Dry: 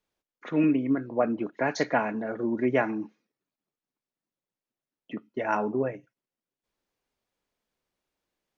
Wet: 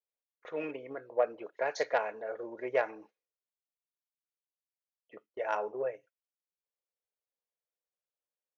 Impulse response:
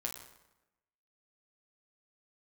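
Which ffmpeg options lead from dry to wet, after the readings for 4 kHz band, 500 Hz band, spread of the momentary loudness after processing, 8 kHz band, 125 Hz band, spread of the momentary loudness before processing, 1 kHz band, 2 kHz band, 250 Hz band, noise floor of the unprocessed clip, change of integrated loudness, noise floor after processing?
-5.5 dB, -4.0 dB, 10 LU, n/a, under -20 dB, 17 LU, -5.5 dB, -6.0 dB, -20.5 dB, under -85 dBFS, -7.0 dB, under -85 dBFS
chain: -af "aeval=exprs='0.282*(cos(1*acos(clip(val(0)/0.282,-1,1)))-cos(1*PI/2))+0.0282*(cos(3*acos(clip(val(0)/0.282,-1,1)))-cos(3*PI/2))+0.00224*(cos(5*acos(clip(val(0)/0.282,-1,1)))-cos(5*PI/2))':c=same,lowshelf=f=350:t=q:w=3:g=-11.5,agate=range=-11dB:threshold=-50dB:ratio=16:detection=peak,adynamicequalizer=threshold=0.0178:dfrequency=1600:dqfactor=0.7:tfrequency=1600:tqfactor=0.7:attack=5:release=100:ratio=0.375:range=1.5:mode=boostabove:tftype=highshelf,volume=-6.5dB"

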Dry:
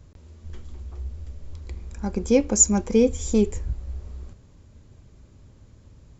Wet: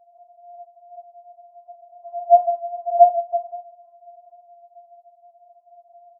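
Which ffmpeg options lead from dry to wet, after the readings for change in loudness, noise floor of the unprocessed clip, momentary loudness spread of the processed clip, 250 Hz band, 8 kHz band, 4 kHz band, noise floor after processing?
+3.0 dB, -52 dBFS, 20 LU, under -40 dB, n/a, under -40 dB, -58 dBFS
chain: -filter_complex "[0:a]asplit=2[a][b];[b]acompressor=threshold=-32dB:ratio=6,volume=2dB[c];[a][c]amix=inputs=2:normalize=0,apsyclip=8dB,aeval=exprs='1.12*sin(PI/2*2*val(0)/1.12)':c=same,aeval=exprs='val(0)+0.0178*(sin(2*PI*60*n/s)+sin(2*PI*2*60*n/s)/2+sin(2*PI*3*60*n/s)/3+sin(2*PI*4*60*n/s)/4+sin(2*PI*5*60*n/s)/5)':c=same,asuperpass=centerf=520:order=8:qfactor=7.6,asplit=2[d][e];[e]adelay=13,volume=-11.5dB[f];[d][f]amix=inputs=2:normalize=0,asplit=3[g][h][i];[h]adelay=115,afreqshift=-49,volume=-23.5dB[j];[i]adelay=230,afreqshift=-98,volume=-32.6dB[k];[g][j][k]amix=inputs=3:normalize=0,afreqshift=220,afftfilt=real='re*4*eq(mod(b,16),0)':imag='im*4*eq(mod(b,16),0)':win_size=2048:overlap=0.75,volume=6dB"

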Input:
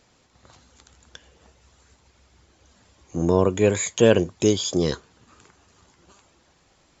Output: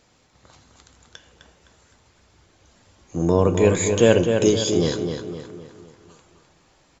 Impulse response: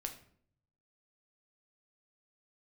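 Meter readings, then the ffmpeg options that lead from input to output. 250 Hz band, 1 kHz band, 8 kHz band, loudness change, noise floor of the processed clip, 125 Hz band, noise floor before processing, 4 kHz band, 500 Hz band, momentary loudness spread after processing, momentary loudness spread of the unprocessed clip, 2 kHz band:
+2.0 dB, +2.0 dB, n/a, +2.0 dB, -60 dBFS, +3.0 dB, -61 dBFS, +1.5 dB, +2.5 dB, 16 LU, 9 LU, +2.0 dB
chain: -filter_complex "[0:a]asplit=2[a][b];[b]adelay=257,lowpass=f=3.9k:p=1,volume=-6dB,asplit=2[c][d];[d]adelay=257,lowpass=f=3.9k:p=1,volume=0.47,asplit=2[e][f];[f]adelay=257,lowpass=f=3.9k:p=1,volume=0.47,asplit=2[g][h];[h]adelay=257,lowpass=f=3.9k:p=1,volume=0.47,asplit=2[i][j];[j]adelay=257,lowpass=f=3.9k:p=1,volume=0.47,asplit=2[k][l];[l]adelay=257,lowpass=f=3.9k:p=1,volume=0.47[m];[a][c][e][g][i][k][m]amix=inputs=7:normalize=0,asplit=2[n][o];[1:a]atrim=start_sample=2205[p];[o][p]afir=irnorm=-1:irlink=0,volume=3dB[q];[n][q]amix=inputs=2:normalize=0,volume=-5.5dB"

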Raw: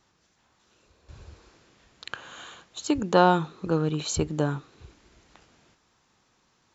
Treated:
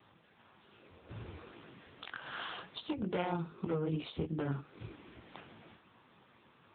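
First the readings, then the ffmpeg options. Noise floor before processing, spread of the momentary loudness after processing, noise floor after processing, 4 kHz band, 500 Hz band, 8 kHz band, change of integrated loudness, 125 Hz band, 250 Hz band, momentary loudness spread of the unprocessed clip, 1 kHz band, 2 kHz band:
-68 dBFS, 19 LU, -66 dBFS, -10.0 dB, -12.5 dB, n/a, -14.0 dB, -9.5 dB, -10.5 dB, 21 LU, -16.5 dB, -10.5 dB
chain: -af "acompressor=threshold=-41dB:ratio=4,aresample=11025,aeval=exprs='0.0224*(abs(mod(val(0)/0.0224+3,4)-2)-1)':c=same,aresample=44100,flanger=delay=17:depth=7.1:speed=2.5,acontrast=27,volume=6dB" -ar 8000 -c:a libopencore_amrnb -b:a 6700

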